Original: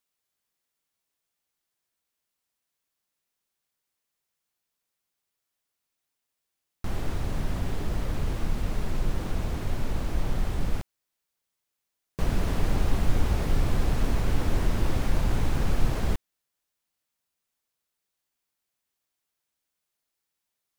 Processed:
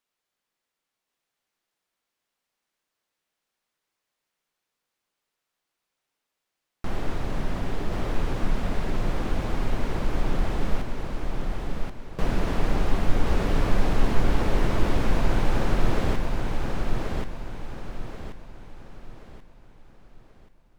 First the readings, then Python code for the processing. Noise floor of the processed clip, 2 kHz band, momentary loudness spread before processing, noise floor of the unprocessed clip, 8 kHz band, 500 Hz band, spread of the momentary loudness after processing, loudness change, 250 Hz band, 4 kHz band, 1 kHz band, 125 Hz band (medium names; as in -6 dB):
-85 dBFS, +5.0 dB, 6 LU, -84 dBFS, -1.0 dB, +5.5 dB, 14 LU, +1.0 dB, +4.0 dB, +3.0 dB, +6.0 dB, +0.5 dB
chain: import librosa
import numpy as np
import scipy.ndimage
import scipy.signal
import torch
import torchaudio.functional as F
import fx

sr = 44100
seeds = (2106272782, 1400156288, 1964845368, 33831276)

y = fx.lowpass(x, sr, hz=3200.0, slope=6)
y = fx.peak_eq(y, sr, hz=71.0, db=-8.5, octaves=2.2)
y = fx.echo_feedback(y, sr, ms=1082, feedback_pct=38, wet_db=-3.5)
y = y * 10.0 ** (4.5 / 20.0)